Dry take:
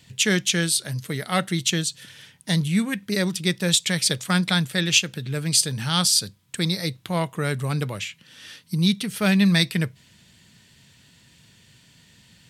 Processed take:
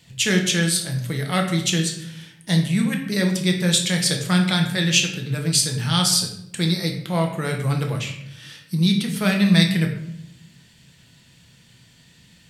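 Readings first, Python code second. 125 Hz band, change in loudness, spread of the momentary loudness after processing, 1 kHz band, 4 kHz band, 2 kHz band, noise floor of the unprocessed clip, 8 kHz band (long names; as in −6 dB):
+3.5 dB, +2.0 dB, 12 LU, +1.0 dB, +1.0 dB, +1.0 dB, −56 dBFS, +0.5 dB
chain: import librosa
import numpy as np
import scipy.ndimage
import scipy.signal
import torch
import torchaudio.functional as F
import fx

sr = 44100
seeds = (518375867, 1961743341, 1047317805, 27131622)

y = fx.room_shoebox(x, sr, seeds[0], volume_m3=190.0, walls='mixed', distance_m=0.79)
y = F.gain(torch.from_numpy(y), -1.0).numpy()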